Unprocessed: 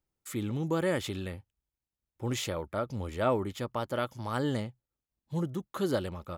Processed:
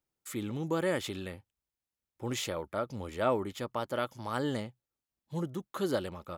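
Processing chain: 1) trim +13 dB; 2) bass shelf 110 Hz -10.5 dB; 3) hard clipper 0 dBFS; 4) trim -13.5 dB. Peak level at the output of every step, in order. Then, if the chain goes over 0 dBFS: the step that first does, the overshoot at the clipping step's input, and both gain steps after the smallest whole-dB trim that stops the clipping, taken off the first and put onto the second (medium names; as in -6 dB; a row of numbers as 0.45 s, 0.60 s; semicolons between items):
-2.0 dBFS, -1.5 dBFS, -1.5 dBFS, -15.0 dBFS; nothing clips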